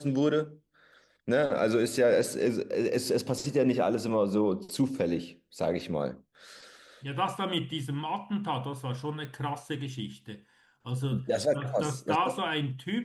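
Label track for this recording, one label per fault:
9.250000	9.250000	click −27 dBFS

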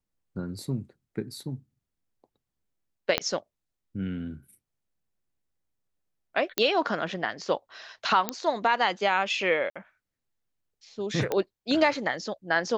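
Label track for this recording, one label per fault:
3.180000	3.180000	click −8 dBFS
6.580000	6.580000	click −7 dBFS
8.290000	8.290000	click −9 dBFS
9.700000	9.760000	drop-out 56 ms
11.320000	11.320000	click −14 dBFS

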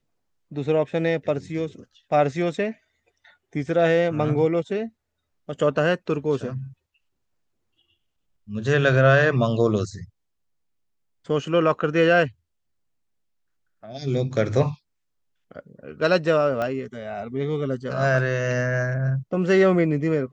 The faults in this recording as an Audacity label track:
16.620000	16.620000	click −15 dBFS

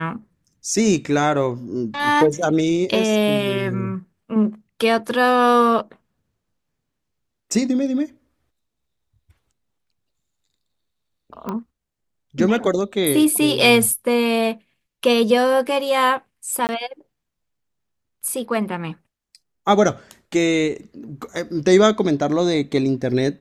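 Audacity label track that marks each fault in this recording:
11.490000	11.490000	click −15 dBFS
16.670000	16.690000	drop-out 19 ms

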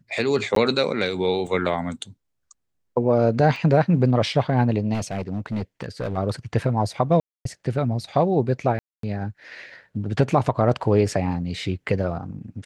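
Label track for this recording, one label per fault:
0.550000	0.560000	drop-out 13 ms
1.470000	1.470000	drop-out 3.6 ms
3.560000	3.560000	drop-out 2.4 ms
4.930000	6.180000	clipping −21.5 dBFS
7.200000	7.450000	drop-out 253 ms
8.790000	9.030000	drop-out 243 ms

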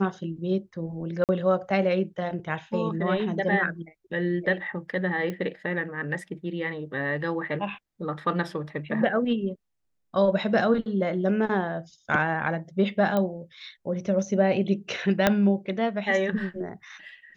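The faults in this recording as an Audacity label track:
1.240000	1.290000	drop-out 48 ms
5.300000	5.300000	click −20 dBFS
13.170000	13.170000	click −14 dBFS
15.270000	15.270000	click −5 dBFS

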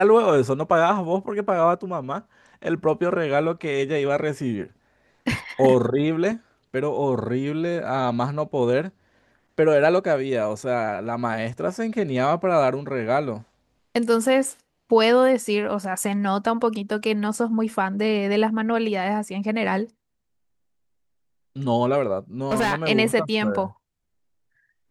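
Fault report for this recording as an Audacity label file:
22.510000	22.740000	clipping −18 dBFS

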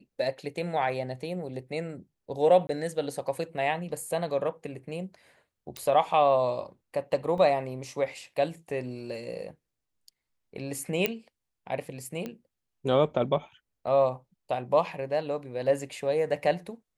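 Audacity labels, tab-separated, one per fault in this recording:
2.670000	2.690000	drop-out 20 ms
5.770000	5.770000	click −20 dBFS
7.380000	7.380000	drop-out 2 ms
11.060000	11.060000	click −10 dBFS
12.260000	12.260000	click −22 dBFS

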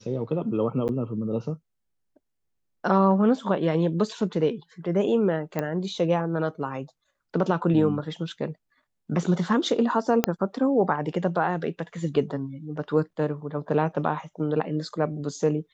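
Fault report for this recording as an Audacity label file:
0.880000	0.890000	drop-out 9.3 ms
5.590000	5.590000	click −14 dBFS
10.240000	10.240000	click −5 dBFS

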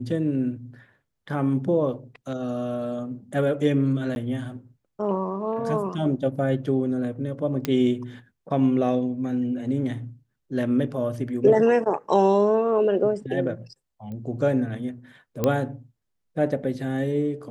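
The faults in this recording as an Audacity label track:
4.150000	4.160000	drop-out
7.650000	7.650000	click −10 dBFS
14.120000	14.120000	click −27 dBFS
15.440000	15.440000	click −9 dBFS

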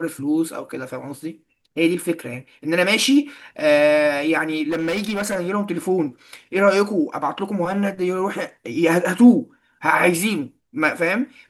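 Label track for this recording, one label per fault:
4.690000	5.370000	clipping −19 dBFS

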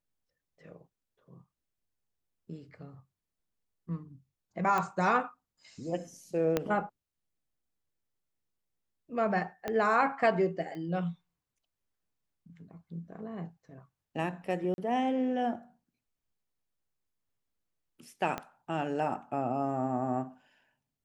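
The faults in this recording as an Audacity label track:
4.780000	4.780000	click −18 dBFS
6.570000	6.570000	click −14 dBFS
9.680000	9.680000	click −19 dBFS
10.750000	10.750000	click −32 dBFS
14.740000	14.780000	drop-out 41 ms
18.380000	18.380000	click −20 dBFS

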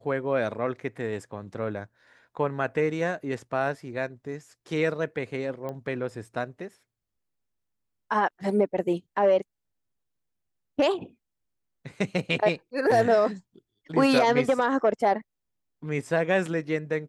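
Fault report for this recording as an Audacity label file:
5.690000	5.690000	click −23 dBFS

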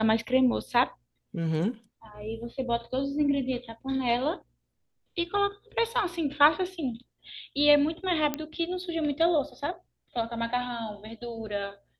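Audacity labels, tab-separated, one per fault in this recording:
8.340000	8.340000	click −14 dBFS

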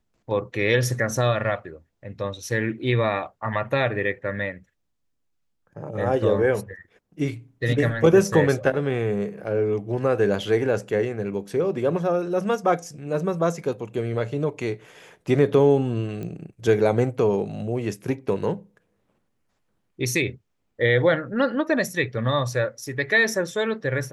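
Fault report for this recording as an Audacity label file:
9.440000	9.440000	drop-out 4.5 ms
16.230000	16.230000	click −22 dBFS

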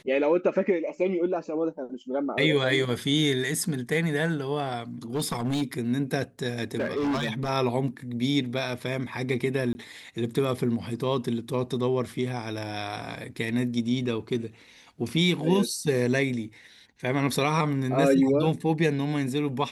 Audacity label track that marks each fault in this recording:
5.150000	5.630000	clipping −23 dBFS
6.780000	7.500000	clipping −23.5 dBFS
9.730000	9.750000	drop-out 20 ms

